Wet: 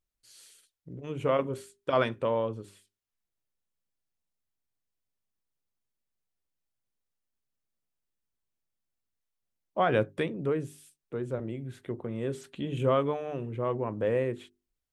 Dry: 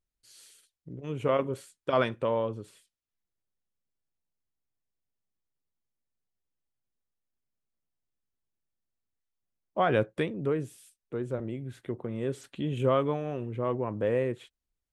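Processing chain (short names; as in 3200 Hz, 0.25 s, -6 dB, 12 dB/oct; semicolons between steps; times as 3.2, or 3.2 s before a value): notches 50/100/150/200/250/300/350/400 Hz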